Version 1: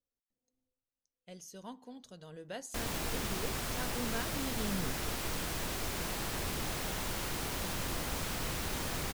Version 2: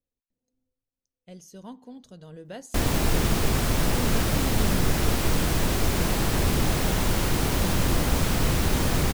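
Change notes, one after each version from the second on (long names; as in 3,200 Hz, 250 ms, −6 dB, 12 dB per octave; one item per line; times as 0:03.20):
background +8.5 dB
master: add low-shelf EQ 460 Hz +8.5 dB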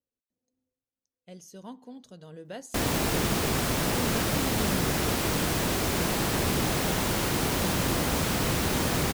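master: add high-pass filter 150 Hz 6 dB per octave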